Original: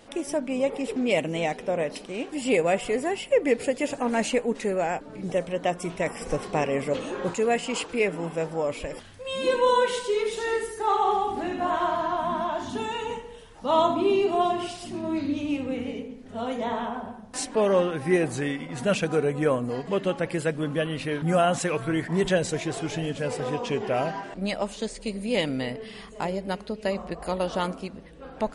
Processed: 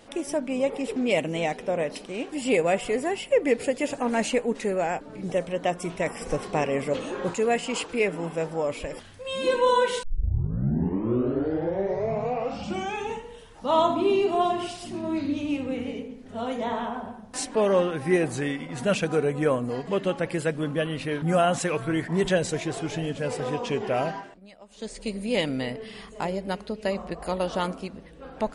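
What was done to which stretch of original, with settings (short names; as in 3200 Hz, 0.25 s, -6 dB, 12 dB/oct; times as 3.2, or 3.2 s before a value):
10.03 tape start 3.23 s
20.71–23.28 mismatched tape noise reduction decoder only
24.1–24.99 dip -21 dB, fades 0.30 s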